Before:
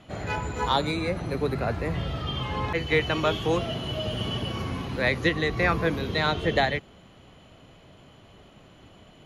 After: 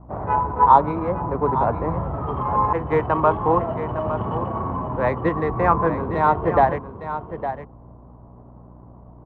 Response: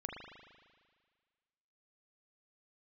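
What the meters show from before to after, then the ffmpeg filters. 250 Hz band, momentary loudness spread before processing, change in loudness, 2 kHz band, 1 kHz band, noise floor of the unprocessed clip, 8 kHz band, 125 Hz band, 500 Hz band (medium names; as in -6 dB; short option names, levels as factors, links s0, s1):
+3.5 dB, 7 LU, +5.5 dB, -4.5 dB, +12.5 dB, -53 dBFS, under -20 dB, +3.0 dB, +5.5 dB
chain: -filter_complex "[0:a]aeval=exprs='val(0)+0.00501*(sin(2*PI*60*n/s)+sin(2*PI*2*60*n/s)/2+sin(2*PI*3*60*n/s)/3+sin(2*PI*4*60*n/s)/4+sin(2*PI*5*60*n/s)/5)':c=same,adynamicsmooth=sensitivity=5:basefreq=550,lowpass=f=1000:t=q:w=4.9,asplit=2[s0][s1];[s1]aecho=0:1:859:0.299[s2];[s0][s2]amix=inputs=2:normalize=0,volume=1.33"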